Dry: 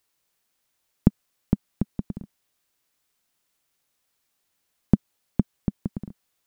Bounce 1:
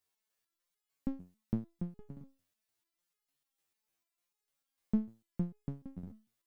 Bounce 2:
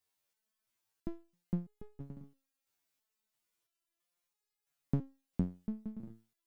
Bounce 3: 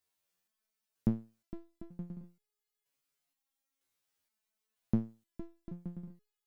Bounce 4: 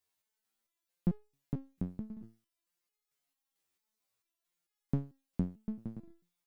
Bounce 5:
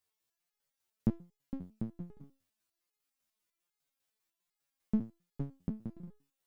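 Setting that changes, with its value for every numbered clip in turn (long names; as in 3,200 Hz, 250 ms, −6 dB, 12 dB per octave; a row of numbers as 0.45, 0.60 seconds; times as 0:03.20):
step-sequenced resonator, speed: 6.7, 3, 2.1, 4.5, 10 Hertz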